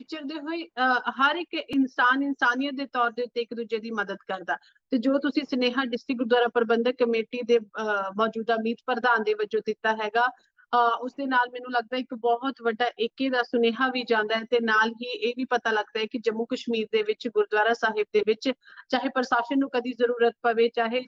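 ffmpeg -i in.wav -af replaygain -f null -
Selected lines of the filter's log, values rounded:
track_gain = +5.4 dB
track_peak = 0.225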